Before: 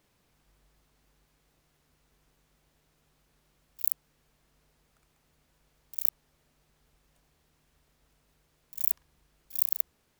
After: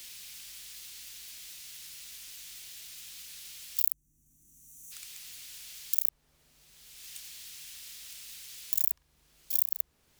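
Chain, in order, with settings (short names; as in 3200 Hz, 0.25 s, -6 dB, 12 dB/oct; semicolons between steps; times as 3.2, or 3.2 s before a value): spectral gain 3.93–4.92, 360–5700 Hz -24 dB; three-band squash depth 100%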